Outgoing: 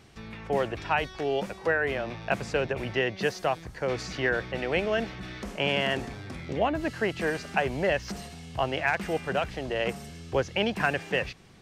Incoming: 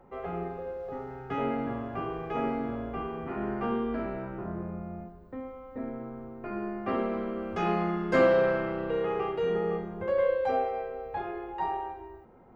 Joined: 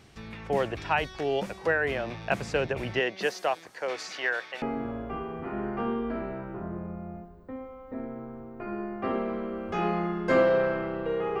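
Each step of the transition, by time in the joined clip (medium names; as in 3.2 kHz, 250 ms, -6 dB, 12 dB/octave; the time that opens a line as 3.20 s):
outgoing
2.99–4.62 s: high-pass 240 Hz -> 860 Hz
4.62 s: go over to incoming from 2.46 s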